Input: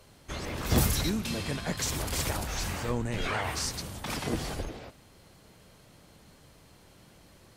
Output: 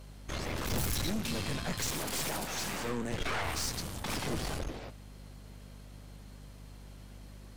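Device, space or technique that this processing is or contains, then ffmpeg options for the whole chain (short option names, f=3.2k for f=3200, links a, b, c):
valve amplifier with mains hum: -filter_complex "[0:a]asettb=1/sr,asplit=3[a][b][c];[a]atrim=end=1.914[d];[b]atrim=start=1.91:end=3.12,asetpts=PTS-STARTPTS,afade=t=in:d=0.004:c=qsin,afade=t=out:st=1.206:d=0.004:c=qsin,highpass=f=150:w=0.5412,highpass=f=150:w=1.3066[e];[c]atrim=start=3.116[f];[d][e]acrossfade=d=0.004:c1=hsin:c2=qsin[g];[g][f]acrossfade=d=0.004:c1=qsin:c2=hsin,aeval=exprs='(tanh(50.1*val(0)+0.7)-tanh(0.7))/50.1':c=same,aeval=exprs='val(0)+0.00251*(sin(2*PI*50*n/s)+sin(2*PI*2*50*n/s)/2+sin(2*PI*3*50*n/s)/3+sin(2*PI*4*50*n/s)/4+sin(2*PI*5*50*n/s)/5)':c=same,volume=3.5dB"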